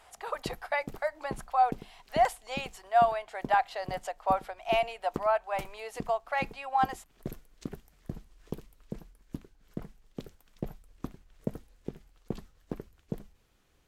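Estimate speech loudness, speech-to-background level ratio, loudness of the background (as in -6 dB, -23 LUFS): -30.5 LUFS, 14.0 dB, -44.5 LUFS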